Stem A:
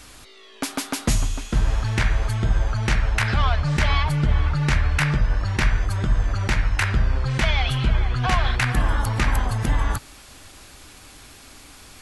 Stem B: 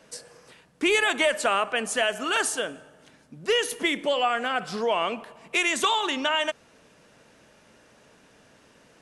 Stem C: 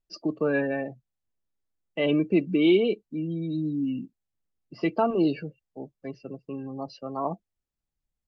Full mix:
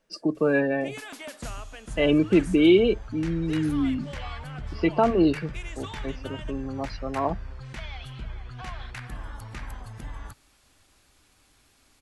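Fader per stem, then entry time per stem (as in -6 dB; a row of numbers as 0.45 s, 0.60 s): -17.0 dB, -18.5 dB, +3.0 dB; 0.35 s, 0.00 s, 0.00 s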